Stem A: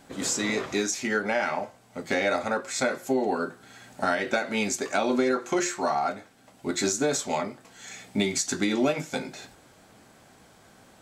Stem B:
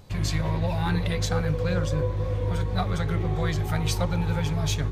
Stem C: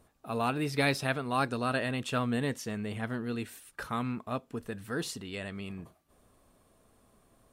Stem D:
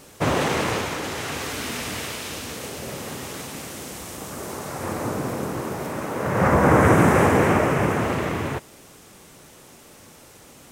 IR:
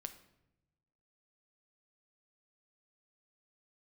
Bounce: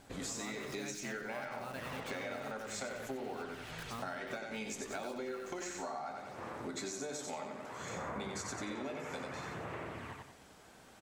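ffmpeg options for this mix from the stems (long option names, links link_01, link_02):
-filter_complex "[0:a]volume=-5.5dB,asplit=2[link_01][link_02];[link_02]volume=-5.5dB[link_03];[1:a]volume=-17dB[link_04];[2:a]acrusher=bits=7:dc=4:mix=0:aa=0.000001,volume=-9dB,asplit=2[link_05][link_06];[3:a]lowpass=3800,lowshelf=frequency=480:gain=-9.5,aphaser=in_gain=1:out_gain=1:delay=2.4:decay=0.5:speed=0.61:type=sinusoidal,adelay=1550,volume=-17dB,asplit=2[link_07][link_08];[link_08]volume=-3dB[link_09];[link_06]apad=whole_len=216823[link_10];[link_04][link_10]sidechaincompress=threshold=-45dB:ratio=8:attack=16:release=1390[link_11];[link_03][link_09]amix=inputs=2:normalize=0,aecho=0:1:91|182|273|364|455:1|0.35|0.122|0.0429|0.015[link_12];[link_01][link_11][link_05][link_07][link_12]amix=inputs=5:normalize=0,bandreject=frequency=50:width_type=h:width=6,bandreject=frequency=100:width_type=h:width=6,bandreject=frequency=150:width_type=h:width=6,bandreject=frequency=200:width_type=h:width=6,bandreject=frequency=250:width_type=h:width=6,bandreject=frequency=300:width_type=h:width=6,bandreject=frequency=350:width_type=h:width=6,acompressor=threshold=-39dB:ratio=6"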